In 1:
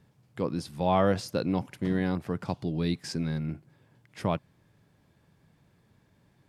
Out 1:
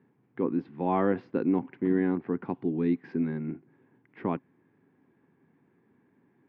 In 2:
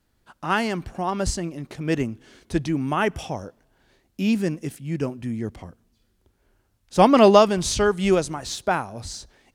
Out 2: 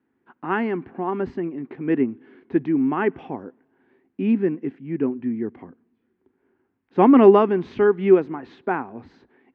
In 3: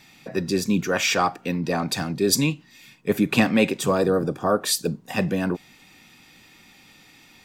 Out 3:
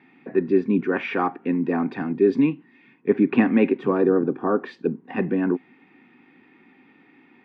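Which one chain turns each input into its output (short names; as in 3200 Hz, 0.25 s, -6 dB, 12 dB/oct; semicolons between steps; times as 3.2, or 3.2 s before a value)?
speaker cabinet 210–2100 Hz, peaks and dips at 260 Hz +9 dB, 380 Hz +7 dB, 600 Hz -10 dB, 1300 Hz -4 dB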